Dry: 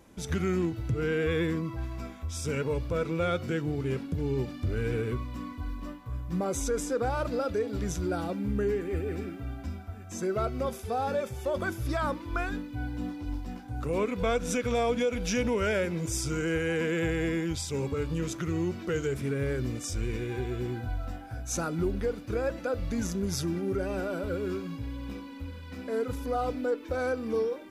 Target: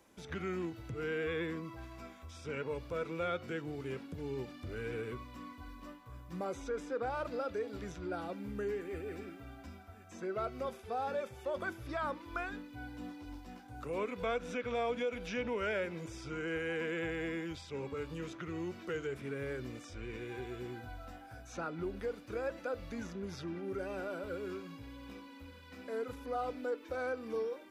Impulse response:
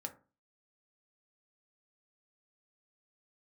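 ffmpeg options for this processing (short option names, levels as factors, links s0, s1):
-filter_complex "[0:a]lowshelf=f=250:g=-11.5,acrossover=split=300|1300|3800[s0][s1][s2][s3];[s3]acompressor=threshold=0.001:ratio=6[s4];[s0][s1][s2][s4]amix=inputs=4:normalize=0,volume=0.562"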